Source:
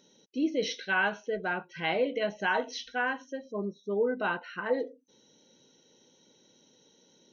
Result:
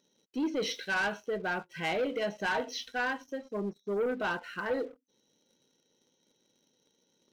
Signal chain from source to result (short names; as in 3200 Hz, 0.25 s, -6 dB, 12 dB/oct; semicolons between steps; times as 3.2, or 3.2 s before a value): sample leveller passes 2; gain -7 dB